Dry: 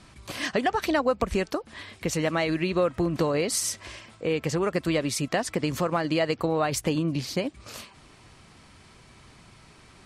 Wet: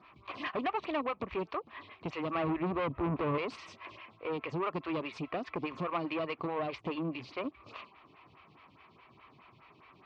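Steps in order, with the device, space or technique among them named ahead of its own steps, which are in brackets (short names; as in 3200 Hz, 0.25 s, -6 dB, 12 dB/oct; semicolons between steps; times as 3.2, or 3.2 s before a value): 2.35–3.38 tilt -4 dB/oct; vibe pedal into a guitar amplifier (photocell phaser 4.8 Hz; tube stage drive 26 dB, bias 0.4; speaker cabinet 93–3600 Hz, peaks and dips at 210 Hz -5 dB, 520 Hz -4 dB, 1100 Hz +9 dB, 1600 Hz -5 dB, 2500 Hz +7 dB); gain -2 dB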